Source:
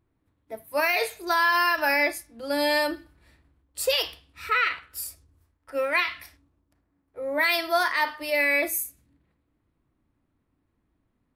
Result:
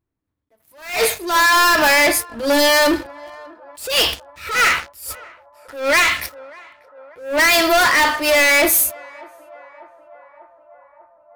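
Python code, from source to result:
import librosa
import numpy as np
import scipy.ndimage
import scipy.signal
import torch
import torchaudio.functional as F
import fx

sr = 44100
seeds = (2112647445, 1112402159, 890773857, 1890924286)

y = fx.leveller(x, sr, passes=5)
y = fx.echo_banded(y, sr, ms=593, feedback_pct=76, hz=790.0, wet_db=-22.0)
y = fx.attack_slew(y, sr, db_per_s=120.0)
y = F.gain(torch.from_numpy(y), 1.5).numpy()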